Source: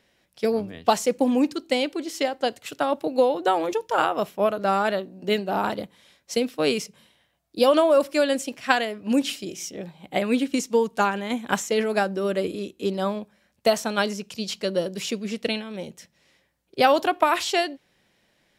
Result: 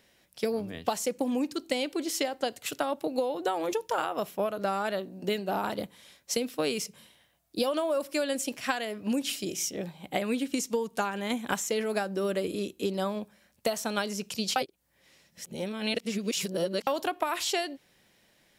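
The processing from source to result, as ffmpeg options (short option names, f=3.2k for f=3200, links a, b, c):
-filter_complex "[0:a]asplit=3[a][b][c];[a]atrim=end=14.562[d];[b]atrim=start=14.558:end=16.872,asetpts=PTS-STARTPTS,areverse[e];[c]atrim=start=16.868[f];[d][e]acrossfade=d=0.004:c1=hsin:c2=hsin[g];[g][f]acrossfade=d=0.004:c1=hsin:c2=hsin,highshelf=f=7.4k:g=9,acompressor=threshold=-26dB:ratio=6"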